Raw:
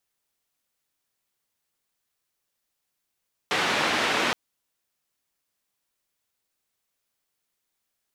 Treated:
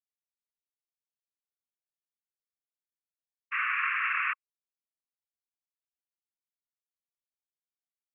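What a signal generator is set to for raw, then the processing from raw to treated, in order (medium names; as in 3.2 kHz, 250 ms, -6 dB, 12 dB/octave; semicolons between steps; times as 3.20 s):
noise band 200–2600 Hz, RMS -24.5 dBFS 0.82 s
Chebyshev band-pass 1.1–2.7 kHz, order 5; expander -26 dBFS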